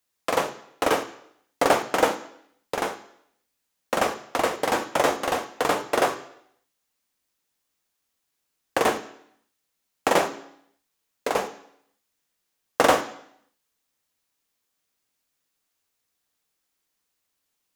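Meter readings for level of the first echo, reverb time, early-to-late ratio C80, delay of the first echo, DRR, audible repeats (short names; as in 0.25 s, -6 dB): none, 0.70 s, 16.0 dB, none, 8.0 dB, none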